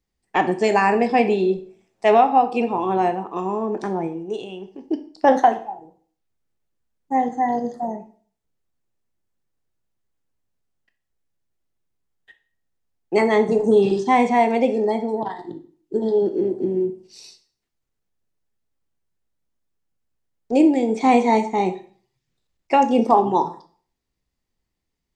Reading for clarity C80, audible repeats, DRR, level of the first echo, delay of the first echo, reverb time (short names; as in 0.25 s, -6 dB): 17.5 dB, none, 8.0 dB, none, none, 0.45 s